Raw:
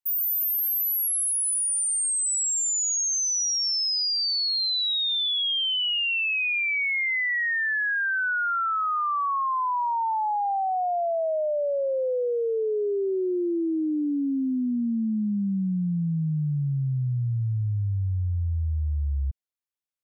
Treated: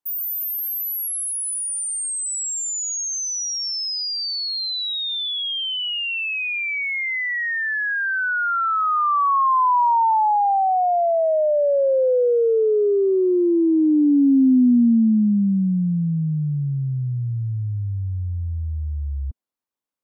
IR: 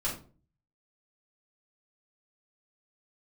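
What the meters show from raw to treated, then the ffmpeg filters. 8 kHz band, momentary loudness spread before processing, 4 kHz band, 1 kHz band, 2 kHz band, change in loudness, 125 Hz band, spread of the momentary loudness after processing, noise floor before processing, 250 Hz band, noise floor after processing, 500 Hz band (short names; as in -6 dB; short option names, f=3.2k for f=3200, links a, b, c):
-0.5 dB, 5 LU, 0.0 dB, +7.5 dB, +1.5 dB, +4.0 dB, +2.5 dB, 10 LU, -26 dBFS, +9.5 dB, -26 dBFS, +7.5 dB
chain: -af "acontrast=77,equalizer=f=250:t=o:w=1:g=11,equalizer=f=500:t=o:w=1:g=5,equalizer=f=1k:t=o:w=1:g=8,volume=-7.5dB"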